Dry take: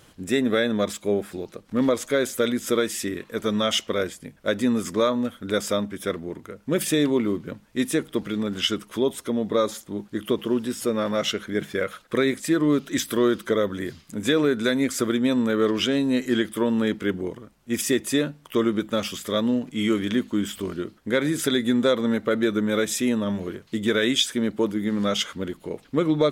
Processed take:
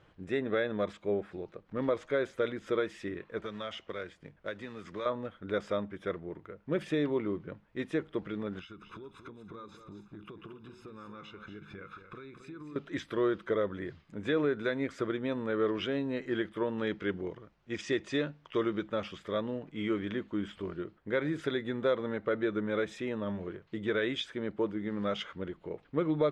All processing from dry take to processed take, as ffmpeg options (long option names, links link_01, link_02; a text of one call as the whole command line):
ffmpeg -i in.wav -filter_complex "[0:a]asettb=1/sr,asplit=3[link_01][link_02][link_03];[link_01]atrim=end=3.414[link_04];[link_02]atrim=start=3.41:end=5.06,asetpts=PTS-STARTPTS,afade=type=in:duration=0.004:curve=qsin,afade=type=out:start_time=1.646:duration=0.004:curve=qsin,acrossover=split=90|1400|6200[link_05][link_06][link_07][link_08];[link_05]acompressor=threshold=-56dB:ratio=3[link_09];[link_06]acompressor=threshold=-32dB:ratio=3[link_10];[link_07]acompressor=threshold=-31dB:ratio=3[link_11];[link_08]acompressor=threshold=-43dB:ratio=3[link_12];[link_09][link_10][link_11][link_12]amix=inputs=4:normalize=0,acrusher=bits=4:mode=log:mix=0:aa=0.000001[link_13];[link_03]atrim=start=5.056[link_14];[link_04][link_13]acrossfade=duration=0.004:curve1=hsin:curve2=qsin[link_15];[link_15][link_14]acrossfade=duration=0.004:curve1=qsin:curve2=hsin,asettb=1/sr,asplit=3[link_16][link_17][link_18];[link_16]atrim=end=8.594[link_19];[link_17]atrim=start=8.59:end=12.76,asetpts=PTS-STARTPTS,afade=type=in:duration=0.004:curve=qsin,afade=type=out:start_time=4.166:duration=0.004:curve=qsin,aecho=1:1:0.8:0.88,atrim=end_sample=183897,acompressor=threshold=-34dB:ratio=10:attack=3.2:release=140:knee=1:detection=peak,aecho=1:1:229|280:0.355|0.112,atrim=end_sample=183897[link_20];[link_18]atrim=start=12.756[link_21];[link_19][link_20]acrossfade=duration=0.004:curve1=hsin:curve2=qsin[link_22];[link_22][link_21]acrossfade=duration=0.004:curve1=qsin:curve2=hsin,asettb=1/sr,asplit=3[link_23][link_24][link_25];[link_23]atrim=end=16.784[link_26];[link_24]atrim=start=16.78:end=18.89,asetpts=PTS-STARTPTS,afade=type=in:duration=0.004:curve=qsin,afade=type=out:start_time=2.106:duration=0.004:curve=qsin,lowpass=frequency=6500:width=0.5412,lowpass=frequency=6500:width=1.3066,aemphasis=mode=production:type=75kf[link_27];[link_25]atrim=start=18.886[link_28];[link_26][link_27]acrossfade=duration=0.004:curve1=hsin:curve2=qsin[link_29];[link_29][link_28]acrossfade=duration=0.004:curve1=qsin:curve2=hsin,lowpass=2300,equalizer=frequency=240:width_type=o:width=0.3:gain=-11,volume=-7dB" out.wav